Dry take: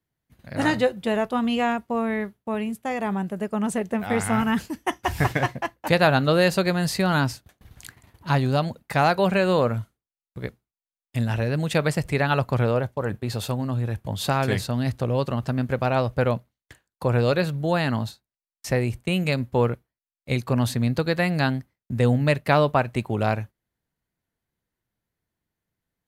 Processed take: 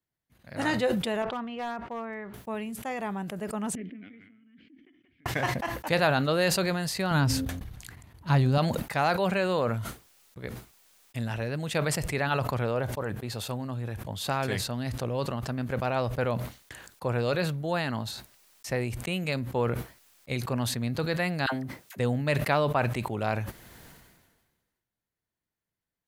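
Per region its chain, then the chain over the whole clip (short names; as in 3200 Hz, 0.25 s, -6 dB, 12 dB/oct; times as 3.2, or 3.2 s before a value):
1.22–2.34 LPF 1800 Hz + low shelf 460 Hz -8.5 dB + hard clip -23 dBFS
3.75–5.26 compressor, threshold -38 dBFS + vowel filter i + air absorption 360 m
7.11–8.58 low shelf 220 Hz +12 dB + de-hum 88.24 Hz, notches 6
21.46–21.99 HPF 350 Hz 6 dB/oct + dispersion lows, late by 66 ms, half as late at 810 Hz
whole clip: low shelf 360 Hz -4.5 dB; sustainer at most 40 dB/s; gain -5 dB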